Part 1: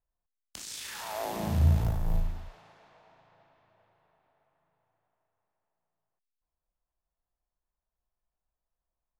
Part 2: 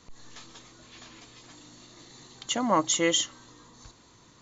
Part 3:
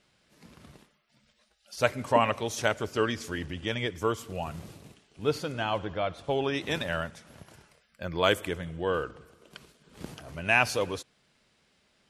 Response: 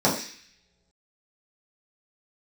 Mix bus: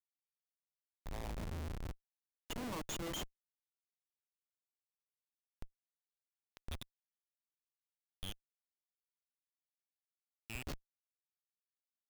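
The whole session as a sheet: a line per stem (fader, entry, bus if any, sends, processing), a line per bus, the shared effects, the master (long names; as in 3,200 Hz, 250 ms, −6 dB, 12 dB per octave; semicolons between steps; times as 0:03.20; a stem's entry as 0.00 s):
+1.5 dB, 0.00 s, no send, downward compressor 4 to 1, threshold −32 dBFS, peak gain reduction 12 dB; soft clipping −32 dBFS, distortion −14 dB
−6.0 dB, 0.00 s, no send, hum removal 65.52 Hz, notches 14
−2.0 dB, 0.00 s, no send, inverse Chebyshev band-stop filter 190–1,700 Hz, stop band 40 dB; automatic ducking −19 dB, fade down 1.30 s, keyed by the second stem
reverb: not used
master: high-pass filter 58 Hz 12 dB per octave; spectral peaks only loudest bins 64; comparator with hysteresis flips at −32.5 dBFS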